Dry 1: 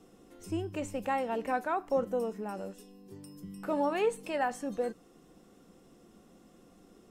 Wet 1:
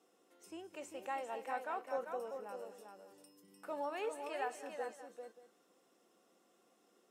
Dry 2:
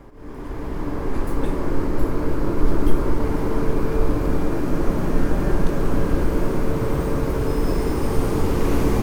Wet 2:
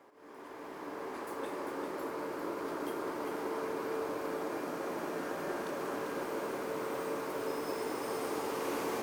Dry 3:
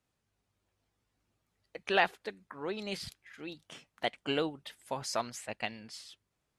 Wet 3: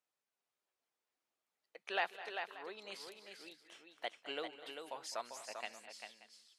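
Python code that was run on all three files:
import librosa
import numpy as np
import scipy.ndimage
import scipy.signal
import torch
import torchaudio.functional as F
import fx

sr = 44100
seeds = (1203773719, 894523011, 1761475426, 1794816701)

y = scipy.signal.sosfilt(scipy.signal.butter(2, 470.0, 'highpass', fs=sr, output='sos'), x)
y = fx.echo_multitap(y, sr, ms=(208, 240, 395, 582), db=(-16.0, -18.5, -6.5, -18.0))
y = y * 10.0 ** (-8.5 / 20.0)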